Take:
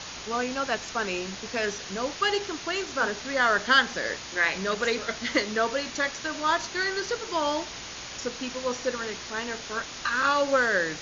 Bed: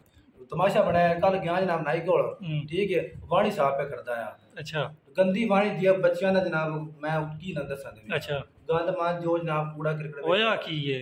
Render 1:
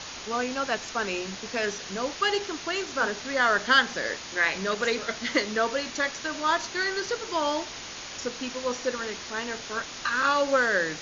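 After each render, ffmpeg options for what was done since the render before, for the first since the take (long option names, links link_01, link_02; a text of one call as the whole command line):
ffmpeg -i in.wav -af "bandreject=frequency=60:width_type=h:width=4,bandreject=frequency=120:width_type=h:width=4,bandreject=frequency=180:width_type=h:width=4" out.wav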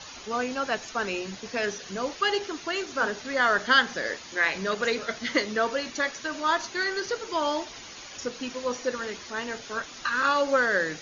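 ffmpeg -i in.wav -af "afftdn=noise_reduction=9:noise_floor=-40" out.wav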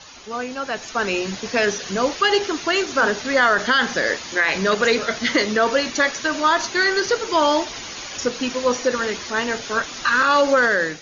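ffmpeg -i in.wav -af "alimiter=limit=-18dB:level=0:latency=1:release=27,dynaudnorm=framelen=630:gausssize=3:maxgain=10dB" out.wav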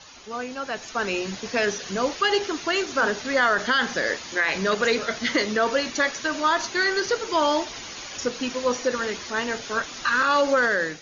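ffmpeg -i in.wav -af "volume=-4dB" out.wav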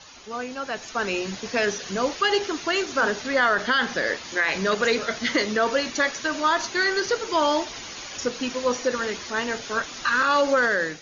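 ffmpeg -i in.wav -filter_complex "[0:a]asettb=1/sr,asplit=3[link_01][link_02][link_03];[link_01]atrim=end=3.284[link_04];[link_02]atrim=start=3.28:end=4.25,asetpts=PTS-STARTPTS,afade=type=in:duration=0.004:curve=qsin,afade=type=out:start_time=0.966:duration=0.004:curve=qsin,lowpass=6000[link_05];[link_03]atrim=start=4.246[link_06];[link_04][link_05]acrossfade=duration=0.004:curve1=hsin:curve2=qsin[link_07];[link_07][link_06]acrossfade=duration=0.004:curve1=qsin:curve2=hsin" out.wav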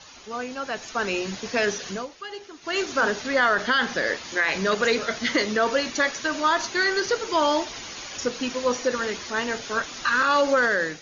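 ffmpeg -i in.wav -filter_complex "[0:a]asplit=3[link_01][link_02][link_03];[link_01]atrim=end=2.07,asetpts=PTS-STARTPTS,afade=type=out:start_time=1.88:duration=0.19:silence=0.177828[link_04];[link_02]atrim=start=2.07:end=2.61,asetpts=PTS-STARTPTS,volume=-15dB[link_05];[link_03]atrim=start=2.61,asetpts=PTS-STARTPTS,afade=type=in:duration=0.19:silence=0.177828[link_06];[link_04][link_05][link_06]concat=n=3:v=0:a=1" out.wav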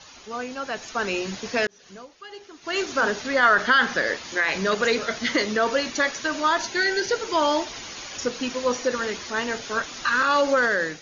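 ffmpeg -i in.wav -filter_complex "[0:a]asettb=1/sr,asplit=3[link_01][link_02][link_03];[link_01]atrim=end=3.434[link_04];[link_02]atrim=start=3.43:end=4.02,asetpts=PTS-STARTPTS,afade=type=in:duration=0.004:curve=qsin,afade=type=out:start_time=0.586:duration=0.004:curve=qsin,equalizer=frequency=1400:width=1.5:gain=5[link_05];[link_03]atrim=start=4.016[link_06];[link_04][link_05]acrossfade=duration=0.004:curve1=hsin:curve2=qsin[link_07];[link_07][link_06]acrossfade=duration=0.004:curve1=qsin:curve2=hsin,asettb=1/sr,asplit=3[link_08][link_09][link_10];[link_08]atrim=end=6.584[link_11];[link_09]atrim=start=6.58:end=7.19,asetpts=PTS-STARTPTS,afade=type=in:duration=0.004:curve=qsin,afade=type=out:start_time=0.606:duration=0.004:curve=qsin,asuperstop=centerf=1200:order=20:qfactor=4.7[link_12];[link_10]atrim=start=7.186[link_13];[link_11][link_12]acrossfade=duration=0.004:curve1=hsin:curve2=qsin[link_14];[link_14][link_13]acrossfade=duration=0.004:curve1=qsin:curve2=hsin,asplit=2[link_15][link_16];[link_15]atrim=end=1.67,asetpts=PTS-STARTPTS,afade=type=out:start_time=1.666:duration=0.004:curve=hsin[link_17];[link_16]atrim=start=1.67,asetpts=PTS-STARTPTS,afade=type=in:duration=1.06[link_18];[link_17][link_18]concat=n=2:v=0:a=1" out.wav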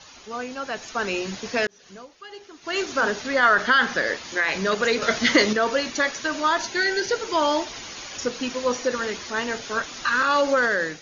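ffmpeg -i in.wav -filter_complex "[0:a]asplit=3[link_01][link_02][link_03];[link_01]atrim=end=5.022[link_04];[link_02]atrim=start=5.018:end=5.532,asetpts=PTS-STARTPTS,volume=5.5dB[link_05];[link_03]atrim=start=5.528[link_06];[link_04][link_05]acrossfade=duration=0.004:curve1=hsin:curve2=hsin[link_07];[link_07][link_06]acrossfade=duration=0.004:curve1=hsin:curve2=hsin" out.wav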